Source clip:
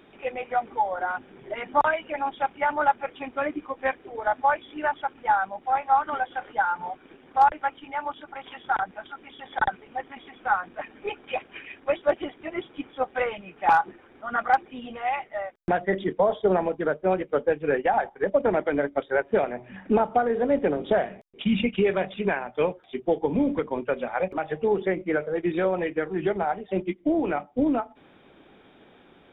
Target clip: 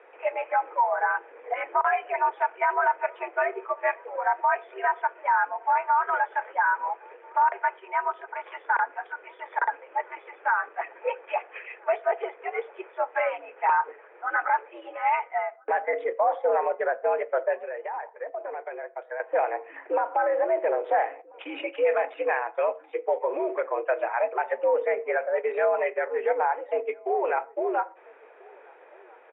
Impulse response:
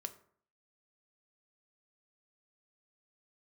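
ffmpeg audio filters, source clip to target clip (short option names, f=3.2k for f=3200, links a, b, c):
-filter_complex "[0:a]alimiter=limit=-18.5dB:level=0:latency=1:release=28,asettb=1/sr,asplit=3[a][b][c];[a]atrim=end=17.554[d];[b]atrim=start=17.55:end=19.2,asetpts=PTS-STARTPTS,afade=t=in:d=0.004:c=qsin,afade=t=out:st=1.646:d=0.004:c=qsin,acompressor=threshold=-40dB:ratio=2.5[e];[c]atrim=start=19.196[f];[d][e]acrossfade=d=0.004:c1=hsin:c2=qsin[g];[g][f]acrossfade=d=0.004:c1=qsin:c2=hsin,asplit=2[h][i];[i]adelay=1341,volume=-26dB,highshelf=f=4k:g=-30.2[j];[h][j]amix=inputs=2:normalize=0,asplit=2[k][l];[1:a]atrim=start_sample=2205,atrim=end_sample=6174[m];[l][m]afir=irnorm=-1:irlink=0,volume=-2dB[n];[k][n]amix=inputs=2:normalize=0,highpass=f=360:t=q:w=0.5412,highpass=f=360:t=q:w=1.307,lowpass=f=2.3k:t=q:w=0.5176,lowpass=f=2.3k:t=q:w=0.7071,lowpass=f=2.3k:t=q:w=1.932,afreqshift=89"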